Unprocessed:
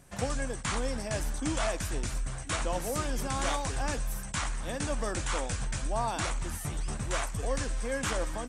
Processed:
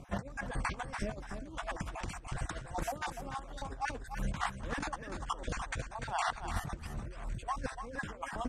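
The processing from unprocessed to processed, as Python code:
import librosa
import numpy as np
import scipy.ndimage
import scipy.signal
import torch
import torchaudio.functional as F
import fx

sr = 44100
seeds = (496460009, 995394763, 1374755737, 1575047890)

y = fx.spec_dropout(x, sr, seeds[0], share_pct=35)
y = fx.lowpass(y, sr, hz=1500.0, slope=6)
y = fx.over_compress(y, sr, threshold_db=-39.0, ratio=-0.5)
y = y + 10.0 ** (-8.5 / 20.0) * np.pad(y, (int(294 * sr / 1000.0), 0))[:len(y)]
y = y * 10.0 ** (1.5 / 20.0)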